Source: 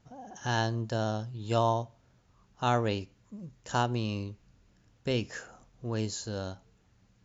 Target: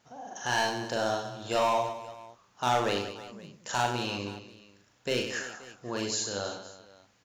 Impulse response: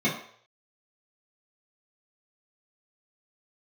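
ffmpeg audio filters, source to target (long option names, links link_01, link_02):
-af "highpass=frequency=680:poles=1,asoftclip=type=hard:threshold=-26.5dB,aecho=1:1:40|100|190|325|527.5:0.631|0.398|0.251|0.158|0.1,volume=5.5dB"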